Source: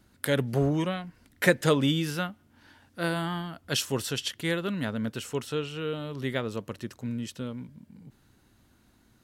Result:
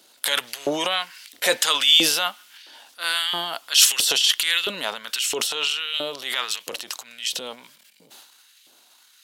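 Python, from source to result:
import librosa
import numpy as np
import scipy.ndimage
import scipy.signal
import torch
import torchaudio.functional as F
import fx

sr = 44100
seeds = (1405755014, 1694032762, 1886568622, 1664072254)

y = fx.high_shelf_res(x, sr, hz=2400.0, db=8.5, q=1.5)
y = fx.transient(y, sr, attack_db=-8, sustain_db=10)
y = fx.filter_lfo_highpass(y, sr, shape='saw_up', hz=1.5, low_hz=460.0, high_hz=2400.0, q=1.6)
y = y * 10.0 ** (6.0 / 20.0)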